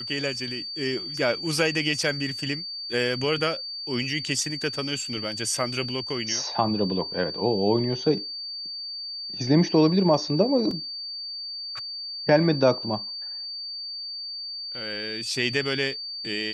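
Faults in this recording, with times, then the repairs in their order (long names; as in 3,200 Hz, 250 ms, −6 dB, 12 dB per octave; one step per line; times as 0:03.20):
whistle 4,600 Hz −32 dBFS
0:10.71: drop-out 3.1 ms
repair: notch filter 4,600 Hz, Q 30
repair the gap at 0:10.71, 3.1 ms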